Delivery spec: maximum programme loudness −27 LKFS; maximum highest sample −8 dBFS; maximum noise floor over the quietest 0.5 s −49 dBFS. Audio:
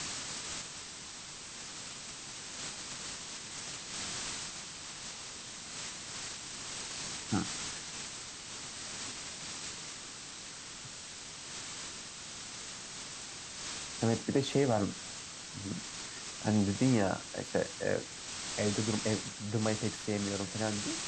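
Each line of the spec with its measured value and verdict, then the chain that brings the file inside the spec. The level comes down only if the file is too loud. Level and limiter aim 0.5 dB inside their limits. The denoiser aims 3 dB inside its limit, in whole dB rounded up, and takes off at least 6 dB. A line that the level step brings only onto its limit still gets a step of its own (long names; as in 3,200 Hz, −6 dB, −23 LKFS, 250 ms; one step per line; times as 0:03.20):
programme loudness −37.0 LKFS: in spec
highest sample −15.0 dBFS: in spec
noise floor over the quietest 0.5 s −46 dBFS: out of spec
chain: broadband denoise 6 dB, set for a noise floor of −46 dBFS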